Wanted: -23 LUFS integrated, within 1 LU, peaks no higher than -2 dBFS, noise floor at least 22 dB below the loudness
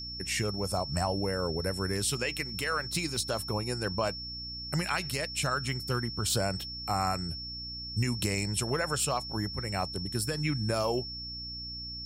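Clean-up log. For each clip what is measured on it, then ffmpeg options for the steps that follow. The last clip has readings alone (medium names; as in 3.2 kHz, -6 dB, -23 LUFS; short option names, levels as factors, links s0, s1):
hum 60 Hz; highest harmonic 300 Hz; hum level -44 dBFS; steady tone 5.4 kHz; tone level -38 dBFS; loudness -31.5 LUFS; peak level -17.0 dBFS; loudness target -23.0 LUFS
-> -af "bandreject=f=60:t=h:w=4,bandreject=f=120:t=h:w=4,bandreject=f=180:t=h:w=4,bandreject=f=240:t=h:w=4,bandreject=f=300:t=h:w=4"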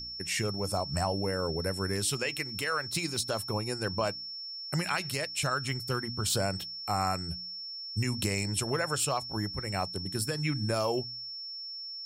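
hum not found; steady tone 5.4 kHz; tone level -38 dBFS
-> -af "bandreject=f=5400:w=30"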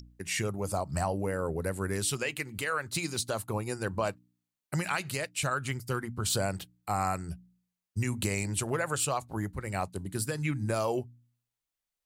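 steady tone not found; loudness -32.5 LUFS; peak level -17.0 dBFS; loudness target -23.0 LUFS
-> -af "volume=2.99"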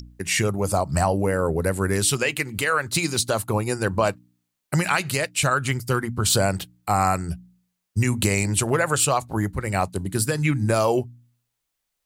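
loudness -23.0 LUFS; peak level -7.5 dBFS; noise floor -80 dBFS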